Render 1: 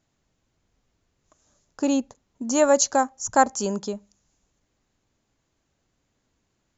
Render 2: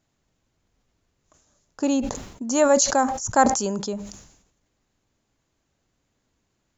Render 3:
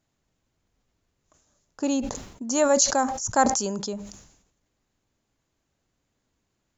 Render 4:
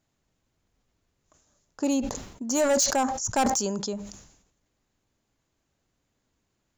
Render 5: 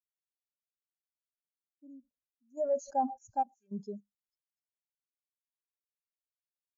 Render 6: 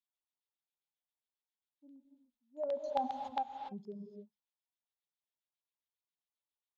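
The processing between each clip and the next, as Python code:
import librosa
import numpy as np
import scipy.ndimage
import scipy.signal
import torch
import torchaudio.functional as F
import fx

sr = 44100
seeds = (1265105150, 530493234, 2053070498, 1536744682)

y1 = fx.sustainer(x, sr, db_per_s=71.0)
y2 = fx.dynamic_eq(y1, sr, hz=5300.0, q=1.1, threshold_db=-40.0, ratio=4.0, max_db=4)
y2 = y2 * 10.0 ** (-3.0 / 20.0)
y3 = np.clip(10.0 ** (18.5 / 20.0) * y2, -1.0, 1.0) / 10.0 ** (18.5 / 20.0)
y4 = fx.tremolo_random(y3, sr, seeds[0], hz=3.5, depth_pct=95)
y4 = fx.echo_stepped(y4, sr, ms=244, hz=2600.0, octaves=0.7, feedback_pct=70, wet_db=-8)
y4 = fx.spectral_expand(y4, sr, expansion=2.5)
y5 = fx.filter_lfo_lowpass(y4, sr, shape='square', hz=7.4, low_hz=900.0, high_hz=3600.0, q=3.9)
y5 = fx.rev_gated(y5, sr, seeds[1], gate_ms=320, shape='rising', drr_db=6.0)
y5 = y5 * 10.0 ** (-7.0 / 20.0)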